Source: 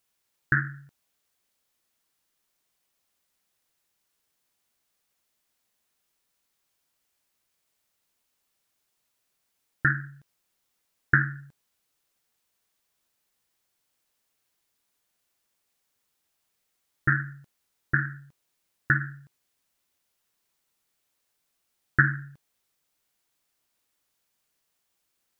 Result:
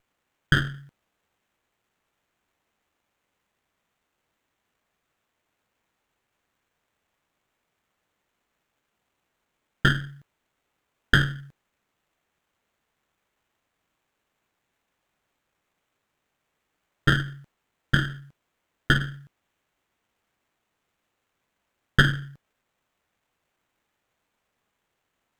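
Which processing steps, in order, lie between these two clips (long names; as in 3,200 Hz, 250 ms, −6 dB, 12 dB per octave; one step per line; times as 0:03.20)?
pitch vibrato 1.2 Hz 8.9 cents
windowed peak hold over 9 samples
level +3.5 dB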